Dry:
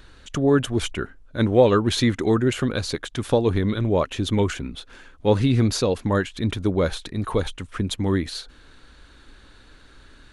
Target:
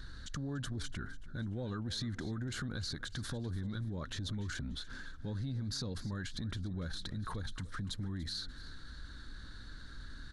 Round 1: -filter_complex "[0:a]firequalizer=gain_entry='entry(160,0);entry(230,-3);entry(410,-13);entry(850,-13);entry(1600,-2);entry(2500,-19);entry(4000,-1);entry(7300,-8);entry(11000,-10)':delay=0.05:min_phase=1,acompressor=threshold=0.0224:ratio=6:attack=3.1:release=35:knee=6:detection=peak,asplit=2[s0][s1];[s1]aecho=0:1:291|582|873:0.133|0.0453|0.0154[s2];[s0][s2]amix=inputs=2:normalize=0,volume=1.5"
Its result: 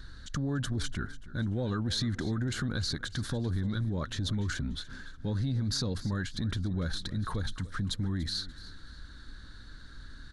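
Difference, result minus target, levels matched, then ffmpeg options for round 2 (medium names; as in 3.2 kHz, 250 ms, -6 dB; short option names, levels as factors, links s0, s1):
compression: peak gain reduction -7.5 dB
-filter_complex "[0:a]firequalizer=gain_entry='entry(160,0);entry(230,-3);entry(410,-13);entry(850,-13);entry(1600,-2);entry(2500,-19);entry(4000,-1);entry(7300,-8);entry(11000,-10)':delay=0.05:min_phase=1,acompressor=threshold=0.00794:ratio=6:attack=3.1:release=35:knee=6:detection=peak,asplit=2[s0][s1];[s1]aecho=0:1:291|582|873:0.133|0.0453|0.0154[s2];[s0][s2]amix=inputs=2:normalize=0,volume=1.5"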